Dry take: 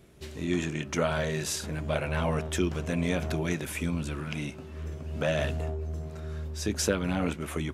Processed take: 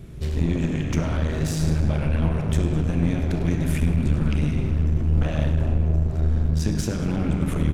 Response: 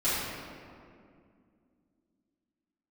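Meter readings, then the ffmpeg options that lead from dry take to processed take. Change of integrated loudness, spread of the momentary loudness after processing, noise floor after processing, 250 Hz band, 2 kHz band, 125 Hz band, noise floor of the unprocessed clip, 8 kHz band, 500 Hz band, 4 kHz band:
+7.5 dB, 2 LU, -27 dBFS, +7.0 dB, -2.0 dB, +11.5 dB, -43 dBFS, -2.5 dB, -0.5 dB, -1.5 dB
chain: -filter_complex "[0:a]asplit=6[a][b][c][d][e][f];[b]adelay=101,afreqshift=-51,volume=-11dB[g];[c]adelay=202,afreqshift=-102,volume=-17.2dB[h];[d]adelay=303,afreqshift=-153,volume=-23.4dB[i];[e]adelay=404,afreqshift=-204,volume=-29.6dB[j];[f]adelay=505,afreqshift=-255,volume=-35.8dB[k];[a][g][h][i][j][k]amix=inputs=6:normalize=0,acompressor=threshold=-34dB:ratio=6,bass=f=250:g=14,treble=f=4k:g=-1,asplit=2[l][m];[1:a]atrim=start_sample=2205,lowpass=8.6k,adelay=34[n];[m][n]afir=irnorm=-1:irlink=0,volume=-14.5dB[o];[l][o]amix=inputs=2:normalize=0,aeval=exprs='clip(val(0),-1,0.0299)':c=same,volume=5.5dB"

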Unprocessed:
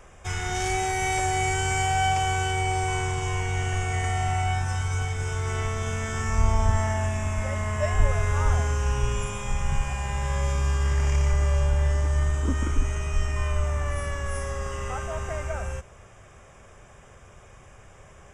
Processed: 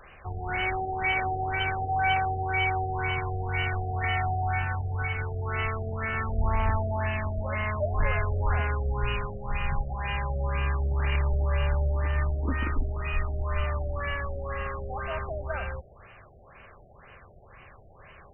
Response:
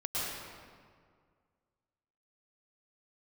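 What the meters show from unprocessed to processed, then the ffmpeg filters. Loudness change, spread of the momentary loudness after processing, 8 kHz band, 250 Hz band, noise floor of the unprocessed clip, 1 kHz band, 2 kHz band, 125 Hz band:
-2.5 dB, 7 LU, under -40 dB, -3.0 dB, -50 dBFS, -1.5 dB, +0.5 dB, -4.0 dB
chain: -af "crystalizer=i=9.5:c=0,asoftclip=type=hard:threshold=-13.5dB,afftfilt=real='re*lt(b*sr/1024,760*pow(3100/760,0.5+0.5*sin(2*PI*2*pts/sr)))':imag='im*lt(b*sr/1024,760*pow(3100/760,0.5+0.5*sin(2*PI*2*pts/sr)))':win_size=1024:overlap=0.75,volume=-3.5dB"

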